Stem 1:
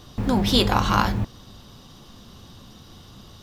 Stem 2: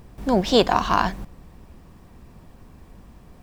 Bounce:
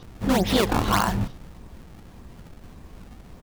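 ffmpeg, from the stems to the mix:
-filter_complex "[0:a]lowpass=f=3800:p=1,volume=1.06[s0];[1:a]acrusher=samples=25:mix=1:aa=0.000001:lfo=1:lforange=40:lforate=1.7,volume=-1,adelay=28,volume=1.33,asplit=2[s1][s2];[s2]apad=whole_len=150865[s3];[s0][s3]sidechaingate=range=0.0224:threshold=0.0178:ratio=16:detection=peak[s4];[s4][s1]amix=inputs=2:normalize=0,acompressor=threshold=0.141:ratio=6"

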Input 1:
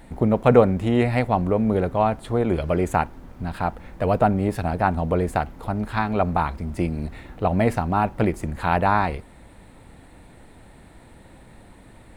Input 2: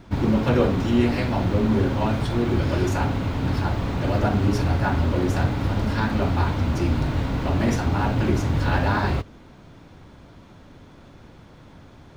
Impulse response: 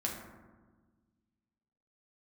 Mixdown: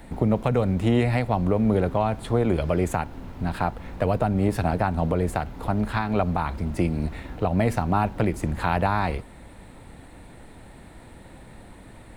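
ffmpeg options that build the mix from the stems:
-filter_complex "[0:a]volume=1.26[s0];[1:a]volume=0.119[s1];[s0][s1]amix=inputs=2:normalize=0,acrossover=split=150|3000[s2][s3][s4];[s3]acompressor=threshold=0.126:ratio=6[s5];[s2][s5][s4]amix=inputs=3:normalize=0,alimiter=limit=0.299:level=0:latency=1:release=223"

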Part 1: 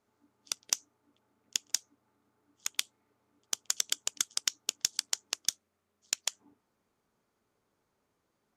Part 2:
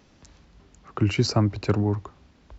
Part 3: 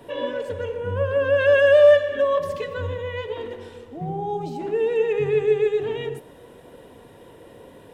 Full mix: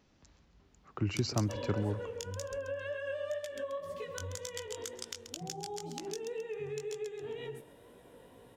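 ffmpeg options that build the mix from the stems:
-filter_complex "[0:a]adelay=650,volume=0.562,asplit=2[s0][s1];[s1]volume=0.119[s2];[1:a]volume=0.299,asplit=2[s3][s4];[s4]volume=0.141[s5];[2:a]highshelf=f=5900:g=4.5,adelay=1400,volume=0.422,asplit=2[s6][s7];[s7]volume=0.0668[s8];[s0][s6]amix=inputs=2:normalize=0,flanger=delay=16:depth=5.6:speed=2,acompressor=threshold=0.0141:ratio=6,volume=1[s9];[s2][s5][s8]amix=inputs=3:normalize=0,aecho=0:1:133|266|399|532|665:1|0.37|0.137|0.0507|0.0187[s10];[s3][s9][s10]amix=inputs=3:normalize=0"

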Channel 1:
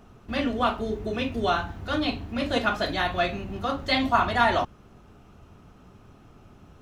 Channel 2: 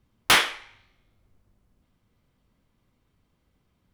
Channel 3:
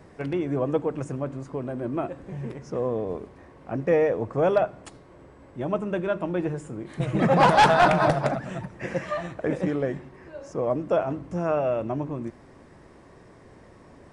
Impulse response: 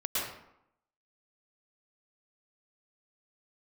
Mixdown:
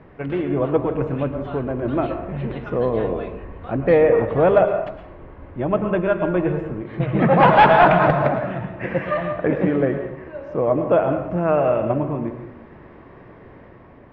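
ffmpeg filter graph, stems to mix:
-filter_complex "[0:a]asubboost=boost=8.5:cutoff=76,acompressor=threshold=0.0141:ratio=2.5,volume=0.562,asplit=2[s0][s1];[1:a]acompressor=threshold=0.0794:ratio=6,volume=0.188[s2];[2:a]volume=1.12,asplit=2[s3][s4];[s4]volume=0.282[s5];[s1]apad=whole_len=173535[s6];[s2][s6]sidechaingate=range=0.316:threshold=0.0112:ratio=16:detection=peak[s7];[3:a]atrim=start_sample=2205[s8];[s5][s8]afir=irnorm=-1:irlink=0[s9];[s0][s7][s3][s9]amix=inputs=4:normalize=0,lowpass=f=2900:w=0.5412,lowpass=f=2900:w=1.3066,dynaudnorm=f=190:g=7:m=1.5"

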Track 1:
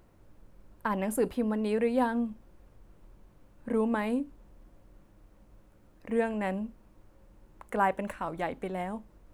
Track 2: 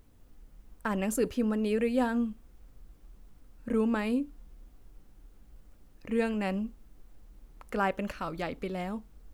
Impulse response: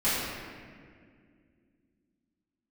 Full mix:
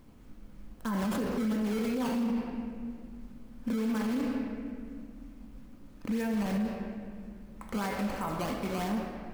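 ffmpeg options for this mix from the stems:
-filter_complex "[0:a]tiltshelf=f=1300:g=-4.5,alimiter=level_in=1.19:limit=0.0631:level=0:latency=1:release=19,volume=0.841,acrusher=samples=14:mix=1:aa=0.000001:lfo=1:lforange=22.4:lforate=3,volume=0.75,asplit=3[s0][s1][s2];[s1]volume=0.355[s3];[1:a]equalizer=f=220:t=o:w=1.4:g=13.5,volume=0.794[s4];[s2]apad=whole_len=411584[s5];[s4][s5]sidechaincompress=threshold=0.00562:ratio=4:attack=50:release=1110[s6];[2:a]atrim=start_sample=2205[s7];[s3][s7]afir=irnorm=-1:irlink=0[s8];[s0][s6][s8]amix=inputs=3:normalize=0,alimiter=limit=0.0631:level=0:latency=1:release=19"

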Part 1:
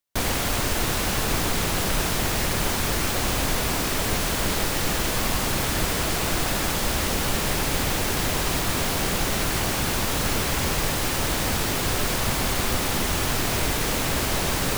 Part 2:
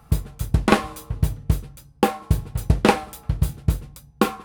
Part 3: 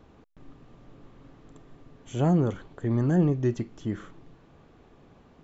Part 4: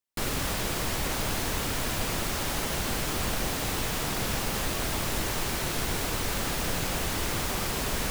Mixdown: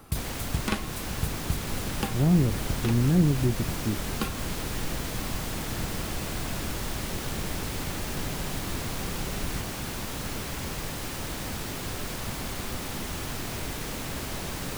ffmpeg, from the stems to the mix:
-filter_complex "[0:a]lowshelf=f=180:g=-6,volume=0.668[s0];[1:a]tiltshelf=f=970:g=-8.5,volume=0.794[s1];[2:a]volume=1.33,asplit=2[s2][s3];[3:a]adelay=1500,volume=0.75[s4];[s3]apad=whole_len=196173[s5];[s1][s5]sidechaincompress=threshold=0.0316:ratio=8:attack=16:release=390[s6];[s0][s6][s2][s4]amix=inputs=4:normalize=0,acrossover=split=280[s7][s8];[s8]acompressor=threshold=0.01:ratio=2[s9];[s7][s9]amix=inputs=2:normalize=0"

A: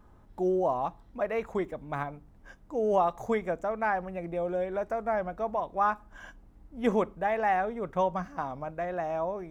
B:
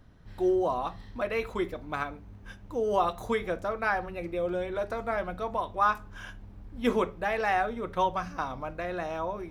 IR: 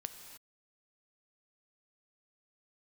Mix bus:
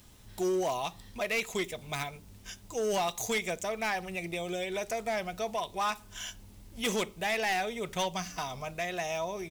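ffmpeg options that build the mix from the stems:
-filter_complex "[0:a]aexciter=amount=7.2:drive=9.4:freq=2200,volume=0.631,asplit=2[s0][s1];[1:a]adelay=0.6,volume=0.631[s2];[s1]apad=whole_len=419061[s3];[s2][s3]sidechaincompress=threshold=0.0112:ratio=5:attack=16:release=198[s4];[s0][s4]amix=inputs=2:normalize=0,asoftclip=type=hard:threshold=0.0531"

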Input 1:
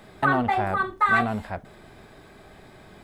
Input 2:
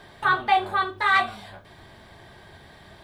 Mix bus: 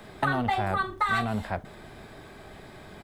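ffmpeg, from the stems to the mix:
-filter_complex "[0:a]volume=1.26[s0];[1:a]volume=-1,adelay=0.3,volume=0.335[s1];[s0][s1]amix=inputs=2:normalize=0,acrossover=split=130|3000[s2][s3][s4];[s3]acompressor=threshold=0.0631:ratio=6[s5];[s2][s5][s4]amix=inputs=3:normalize=0"

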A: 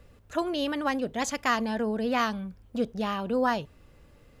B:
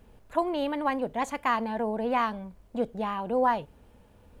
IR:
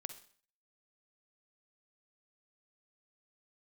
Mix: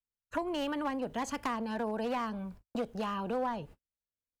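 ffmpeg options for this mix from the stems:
-filter_complex "[0:a]aeval=exprs='0.0668*(abs(mod(val(0)/0.0668+3,4)-2)-1)':c=same,volume=0.668[s0];[1:a]adelay=0.9,volume=0.944,asplit=2[s1][s2];[s2]apad=whole_len=194084[s3];[s0][s3]sidechaincompress=threshold=0.0316:ratio=8:attack=35:release=225[s4];[s4][s1]amix=inputs=2:normalize=0,agate=range=0.00282:threshold=0.00631:ratio=16:detection=peak,acrossover=split=280|610[s5][s6][s7];[s5]acompressor=threshold=0.00794:ratio=4[s8];[s6]acompressor=threshold=0.0112:ratio=4[s9];[s7]acompressor=threshold=0.0158:ratio=4[s10];[s8][s9][s10]amix=inputs=3:normalize=0"

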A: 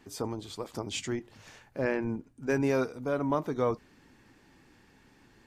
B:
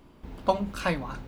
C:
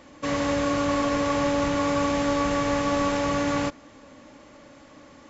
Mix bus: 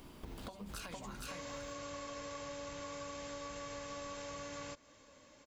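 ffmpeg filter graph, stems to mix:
-filter_complex "[0:a]volume=0.168[s0];[1:a]acompressor=threshold=0.02:ratio=6,volume=0.944,asplit=3[s1][s2][s3];[s2]volume=0.501[s4];[2:a]aecho=1:1:1.9:0.35,adelay=1050,volume=0.188[s5];[s3]apad=whole_len=240802[s6];[s0][s6]sidechaingate=range=0.0224:threshold=0.00447:ratio=16:detection=peak[s7];[s7][s1]amix=inputs=2:normalize=0,acompressor=threshold=0.01:ratio=6,volume=1[s8];[s4]aecho=0:1:458:1[s9];[s5][s8][s9]amix=inputs=3:normalize=0,highshelf=f=3200:g=11.5,acompressor=threshold=0.00708:ratio=5"

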